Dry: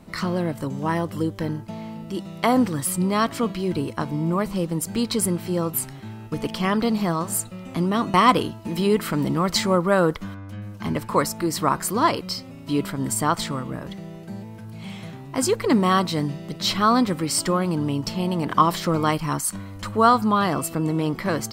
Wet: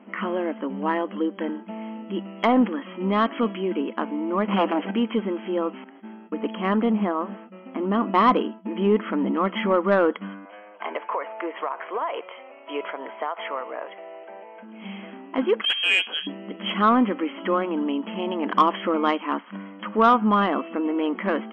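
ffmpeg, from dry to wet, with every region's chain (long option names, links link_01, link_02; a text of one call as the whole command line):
ffmpeg -i in.wav -filter_complex "[0:a]asettb=1/sr,asplit=3[link_01][link_02][link_03];[link_01]atrim=end=4.484[link_04];[link_02]atrim=start=4.48:end=4.91,asetpts=PTS-STARTPTS,afade=type=in:duration=0.004:curve=qsin,afade=type=out:start_time=0.426:duration=0.004:curve=qsin,aeval=exprs='0.224*sin(PI/2*2.51*val(0)/0.224)':channel_layout=same,asplit=2[link_05][link_06];[link_06]highpass=frequency=720:poles=1,volume=7dB,asoftclip=type=tanh:threshold=-12.5dB[link_07];[link_05][link_07]amix=inputs=2:normalize=0,lowpass=frequency=4000:poles=1,volume=-6dB[link_08];[link_03]atrim=start=4.906[link_09];[link_04][link_08]acrossfade=duration=0.004:curve1=hsin:curve2=qsin[link_10];[link_10][link_09]acrossfade=duration=0.004:curve1=qsin:curve2=hsin,asettb=1/sr,asplit=3[link_11][link_12][link_13];[link_11]atrim=end=5.844[link_14];[link_12]atrim=start=5.84:end=9.34,asetpts=PTS-STARTPTS,afade=type=in:duration=0.004:curve=qsin,afade=type=out:start_time=3.496:duration=0.004:curve=qsin,agate=range=-33dB:threshold=-35dB:ratio=3:release=100:detection=peak,lowpass=frequency=1800:poles=1[link_15];[link_13]atrim=start=9.336[link_16];[link_14][link_15]acrossfade=duration=0.004:curve1=hsin:curve2=qsin[link_17];[link_17][link_16]acrossfade=duration=0.004:curve1=qsin:curve2=hsin,asettb=1/sr,asplit=3[link_18][link_19][link_20];[link_18]atrim=end=10.454[link_21];[link_19]atrim=start=10.45:end=14.63,asetpts=PTS-STARTPTS,afade=type=in:duration=0.004:curve=qsin,afade=type=out:start_time=4.176:duration=0.004:curve=qsin,highpass=frequency=440:width=0.5412,highpass=frequency=440:width=1.3066,equalizer=frequency=480:width_type=q:width=4:gain=3,equalizer=frequency=690:width_type=q:width=4:gain=8,equalizer=frequency=980:width_type=q:width=4:gain=4,equalizer=frequency=2200:width_type=q:width=4:gain=4,lowpass=frequency=3200:width=0.5412,lowpass=frequency=3200:width=1.3066,acompressor=threshold=-23dB:ratio=16:attack=3.2:release=140:knee=1:detection=peak[link_22];[link_20]atrim=start=14.626[link_23];[link_21][link_22]acrossfade=duration=0.004:curve1=hsin:curve2=qsin[link_24];[link_24][link_23]acrossfade=duration=0.004:curve1=qsin:curve2=hsin,asettb=1/sr,asplit=3[link_25][link_26][link_27];[link_25]atrim=end=15.614[link_28];[link_26]atrim=start=15.61:end=16.27,asetpts=PTS-STARTPTS,afade=type=in:duration=0.004:curve=qsin,afade=type=out:start_time=0.656:duration=0.004:curve=qsin,lowshelf=frequency=210:gain=-9,lowpass=frequency=3100:width_type=q:width=0.5098,lowpass=frequency=3100:width_type=q:width=0.6013,lowpass=frequency=3100:width_type=q:width=0.9,lowpass=frequency=3100:width_type=q:width=2.563,afreqshift=-3600[link_29];[link_27]atrim=start=16.266[link_30];[link_28][link_29]acrossfade=duration=0.004:curve1=hsin:curve2=qsin[link_31];[link_31][link_30]acrossfade=duration=0.004:curve1=qsin:curve2=hsin,afftfilt=real='re*between(b*sr/4096,190,3300)':imag='im*between(b*sr/4096,190,3300)':win_size=4096:overlap=0.75,acontrast=66,volume=-5.5dB" out.wav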